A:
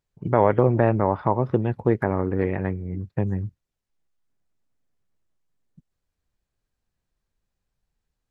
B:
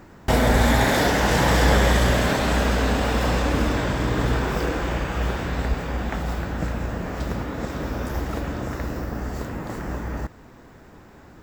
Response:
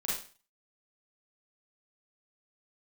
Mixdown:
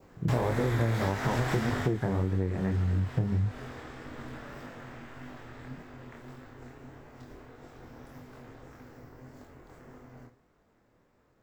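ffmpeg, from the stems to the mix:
-filter_complex "[0:a]aemphasis=mode=reproduction:type=bsi,volume=-1.5dB[a];[1:a]adynamicequalizer=threshold=0.0141:dfrequency=1600:dqfactor=1.9:tfrequency=1600:tqfactor=1.9:attack=5:release=100:ratio=0.375:range=2.5:mode=boostabove:tftype=bell,aeval=exprs='val(0)*sin(2*PI*190*n/s)':c=same,volume=-4dB,afade=t=out:st=1.56:d=0.36:silence=0.237137,asplit=2[b][c];[c]volume=-13.5dB[d];[2:a]atrim=start_sample=2205[e];[d][e]afir=irnorm=-1:irlink=0[f];[a][b][f]amix=inputs=3:normalize=0,flanger=delay=20:depth=5.9:speed=1.7,acompressor=threshold=-24dB:ratio=8"

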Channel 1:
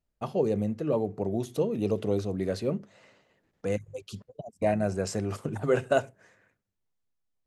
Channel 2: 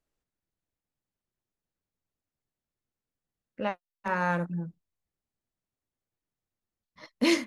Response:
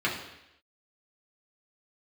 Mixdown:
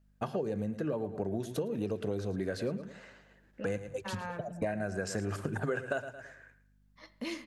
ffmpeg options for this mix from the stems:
-filter_complex "[0:a]equalizer=f=1.6k:t=o:w=0.27:g=12,volume=2dB,asplit=3[a][b][c];[b]volume=-14.5dB[d];[1:a]acompressor=threshold=-38dB:ratio=2,aeval=exprs='val(0)+0.001*(sin(2*PI*50*n/s)+sin(2*PI*2*50*n/s)/2+sin(2*PI*3*50*n/s)/3+sin(2*PI*4*50*n/s)/4+sin(2*PI*5*50*n/s)/5)':c=same,volume=-5.5dB,asplit=2[e][f];[f]volume=-18.5dB[g];[c]apad=whole_len=329371[h];[e][h]sidechaincompress=threshold=-34dB:ratio=8:attack=5.7:release=141[i];[2:a]atrim=start_sample=2205[j];[g][j]afir=irnorm=-1:irlink=0[k];[d]aecho=0:1:110|220|330|440:1|0.26|0.0676|0.0176[l];[a][i][k][l]amix=inputs=4:normalize=0,acompressor=threshold=-30dB:ratio=10"

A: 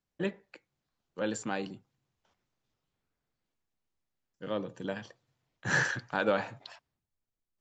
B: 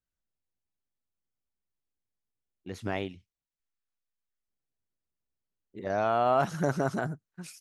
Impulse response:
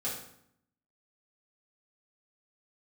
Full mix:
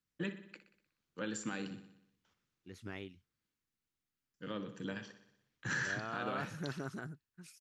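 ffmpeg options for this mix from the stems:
-filter_complex "[0:a]highpass=49,bandreject=f=380:w=12,alimiter=level_in=1dB:limit=-24dB:level=0:latency=1:release=218,volume=-1dB,volume=-2.5dB,asplit=2[a][b];[b]volume=-12.5dB[c];[1:a]volume=-11.5dB[d];[c]aecho=0:1:61|122|183|244|305|366|427|488|549:1|0.59|0.348|0.205|0.121|0.0715|0.0422|0.0249|0.0147[e];[a][d][e]amix=inputs=3:normalize=0,firequalizer=gain_entry='entry(380,0);entry(650,-10);entry(1300,1)':delay=0.05:min_phase=1"

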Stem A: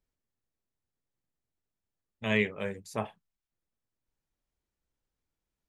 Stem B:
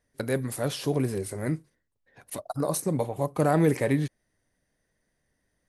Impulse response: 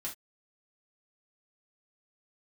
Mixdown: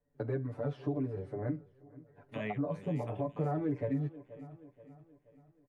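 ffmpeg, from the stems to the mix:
-filter_complex "[0:a]adelay=100,volume=-9.5dB,asplit=2[a][b];[b]volume=-15.5dB[c];[1:a]lowpass=1k,aecho=1:1:6.9:0.88,asplit=2[d][e];[e]adelay=8.5,afreqshift=-1.8[f];[d][f]amix=inputs=2:normalize=1,volume=-2.5dB,asplit=4[g][h][i][j];[h]volume=-14.5dB[k];[i]volume=-24dB[l];[j]apad=whole_len=255020[m];[a][m]sidechaincompress=threshold=-35dB:ratio=8:attack=16:release=118[n];[2:a]atrim=start_sample=2205[o];[k][o]afir=irnorm=-1:irlink=0[p];[c][l]amix=inputs=2:normalize=0,aecho=0:1:478|956|1434|1912|2390|2868:1|0.46|0.212|0.0973|0.0448|0.0206[q];[n][g][p][q]amix=inputs=4:normalize=0,acrossover=split=210|2400[r][s][t];[r]acompressor=threshold=-37dB:ratio=4[u];[s]acompressor=threshold=-35dB:ratio=4[v];[t]acompressor=threshold=-58dB:ratio=4[w];[u][v][w]amix=inputs=3:normalize=0"

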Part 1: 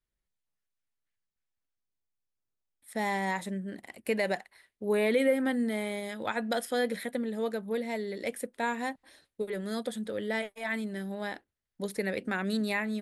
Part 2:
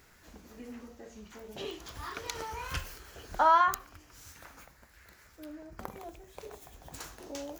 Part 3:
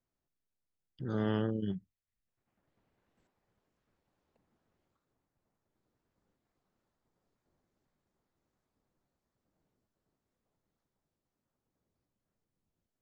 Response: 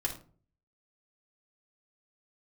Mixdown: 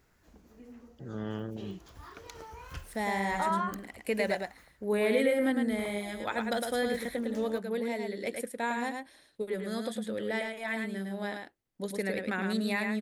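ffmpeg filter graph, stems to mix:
-filter_complex "[0:a]volume=-1.5dB,asplit=2[a][b];[b]volume=-4.5dB[c];[1:a]tiltshelf=f=970:g=3.5,volume=-8dB[d];[2:a]volume=-5dB[e];[c]aecho=0:1:107:1[f];[a][d][e][f]amix=inputs=4:normalize=0"

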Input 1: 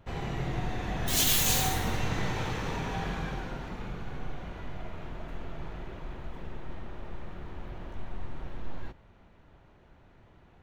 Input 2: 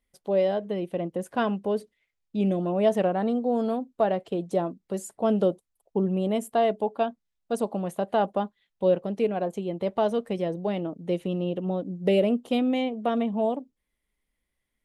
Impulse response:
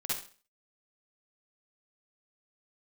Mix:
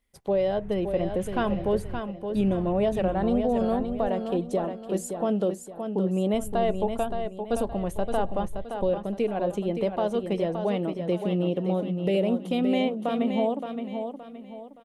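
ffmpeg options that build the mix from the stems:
-filter_complex "[0:a]lowpass=f=2.5k:w=0.5412,lowpass=f=2.5k:w=1.3066,asubboost=boost=11.5:cutoff=200,volume=-19dB,asplit=3[a][b][c];[a]atrim=end=4.08,asetpts=PTS-STARTPTS,afade=t=out:st=4.076:d=0.004:c=hsin[d];[b]atrim=start=4.08:end=6.34,asetpts=PTS-STARTPTS,volume=0[e];[c]atrim=start=6.34,asetpts=PTS-STARTPTS,afade=t=in:d=0.004:c=hsin[f];[d][e][f]concat=n=3:v=0:a=1,asplit=2[g][h];[h]volume=-18dB[i];[1:a]alimiter=limit=-19dB:level=0:latency=1:release=368,volume=2.5dB,asplit=3[j][k][l];[k]volume=-7dB[m];[l]apad=whole_len=468346[n];[g][n]sidechaingate=range=-33dB:threshold=-52dB:ratio=16:detection=peak[o];[i][m]amix=inputs=2:normalize=0,aecho=0:1:570|1140|1710|2280|2850:1|0.35|0.122|0.0429|0.015[p];[o][j][p]amix=inputs=3:normalize=0"

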